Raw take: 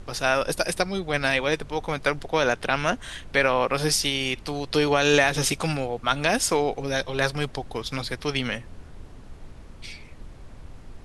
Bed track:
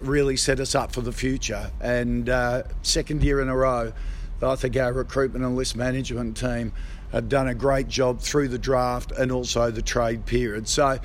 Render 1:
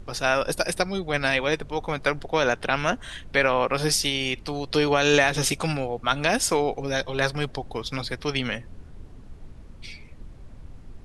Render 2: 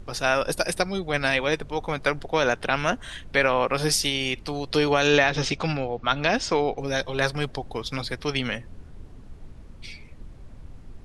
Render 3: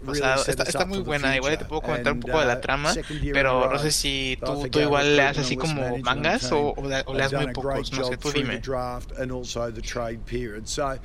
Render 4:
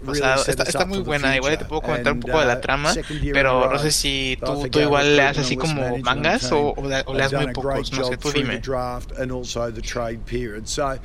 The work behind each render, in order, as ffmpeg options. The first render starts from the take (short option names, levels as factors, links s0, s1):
-af "afftdn=nr=6:nf=-45"
-filter_complex "[0:a]asettb=1/sr,asplit=3[s0][s1][s2];[s0]atrim=end=5.074[s3];[s1]atrim=start=5.07:end=6.78,asetpts=PTS-STARTPTS,afade=t=in:d=0.004:c=qsin,afade=t=out:st=1.706:d=0.004:c=qsin,lowpass=f=5500:w=0.5412,lowpass=f=5500:w=1.3066[s4];[s2]atrim=start=6.776[s5];[s3][s4]acrossfade=d=0.004:c1=hsin:c2=qsin[s6];[s6][s5]acrossfade=d=0.004:c1=qsin:c2=hsin"
-filter_complex "[1:a]volume=0.473[s0];[0:a][s0]amix=inputs=2:normalize=0"
-af "volume=1.5,alimiter=limit=0.794:level=0:latency=1"